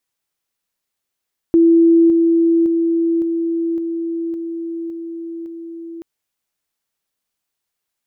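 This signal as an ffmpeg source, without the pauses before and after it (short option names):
-f lavfi -i "aevalsrc='pow(10,(-7.5-3*floor(t/0.56))/20)*sin(2*PI*333*t)':d=4.48:s=44100"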